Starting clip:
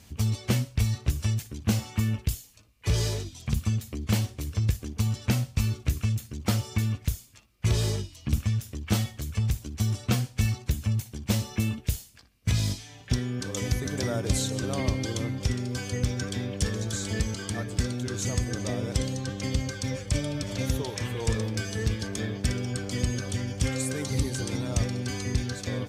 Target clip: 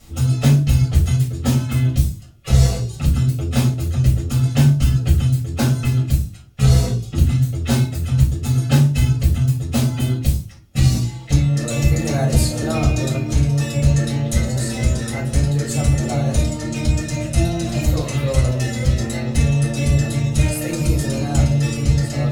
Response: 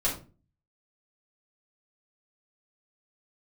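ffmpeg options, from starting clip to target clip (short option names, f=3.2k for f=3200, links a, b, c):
-filter_complex "[1:a]atrim=start_sample=2205[a];[0:a][a]afir=irnorm=-1:irlink=0,asetrate=51156,aresample=44100,volume=-1dB"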